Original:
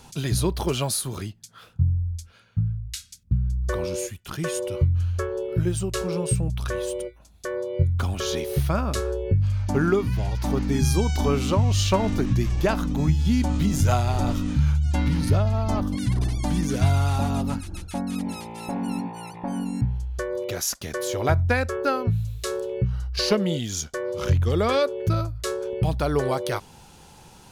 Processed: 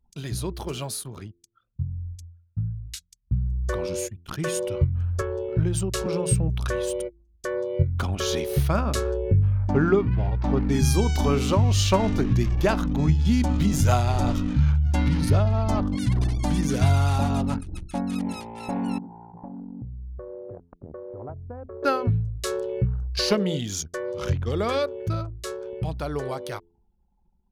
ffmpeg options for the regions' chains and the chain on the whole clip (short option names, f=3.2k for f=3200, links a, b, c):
-filter_complex "[0:a]asettb=1/sr,asplit=3[a][b][c];[a]atrim=end=5.214[d];[b]atrim=start=5.21:end=6.06,asetpts=PTS-STARTPTS,afade=t=in:d=0.004:c=qsin,afade=t=out:st=0.846:d=0.004:c=qsin,equalizer=f=880:w=7:g=4,acrossover=split=190|3000[e][f][g];[f]acompressor=threshold=-27dB:ratio=4:attack=3.2:release=140:knee=2.83:detection=peak[h];[e][h][g]amix=inputs=3:normalize=0[i];[c]atrim=start=6.056[j];[d][i]acrossfade=d=0.004:c1=hsin:c2=qsin[k];[k][j]acrossfade=d=0.004:c1=qsin:c2=hsin,asettb=1/sr,asplit=3[l][m][n];[l]atrim=end=9.174[o];[m]atrim=start=9.17:end=10.69,asetpts=PTS-STARTPTS,afade=t=in:d=0.004:c=qsin,afade=t=out:st=1.516:d=0.004:c=qsin,lowpass=9.5k,aemphasis=mode=reproduction:type=75fm[p];[n]atrim=start=10.686[q];[o][p]acrossfade=d=0.004:c1=hsin:c2=qsin[r];[r][q]acrossfade=d=0.004:c1=qsin:c2=hsin,asettb=1/sr,asplit=3[s][t][u];[s]atrim=end=18.984[v];[t]atrim=start=18.98:end=21.83,asetpts=PTS-STARTPTS,afade=t=in:d=0.004:c=qsin,afade=t=out:st=2.846:d=0.004:c=qsin,lowpass=f=1.1k:w=0.5412,lowpass=f=1.1k:w=1.3066,acompressor=threshold=-36dB:ratio=4:attack=3.2:release=140:knee=1:detection=peak[w];[u]atrim=start=21.826[x];[v][w]acrossfade=d=0.004:c1=hsin:c2=qsin[y];[y][x]acrossfade=d=0.004:c1=qsin:c2=hsin,anlmdn=1.58,bandreject=f=85.79:t=h:w=4,bandreject=f=171.58:t=h:w=4,bandreject=f=257.37:t=h:w=4,bandreject=f=343.16:t=h:w=4,bandreject=f=428.95:t=h:w=4,dynaudnorm=f=340:g=21:m=11.5dB,volume=-6.5dB"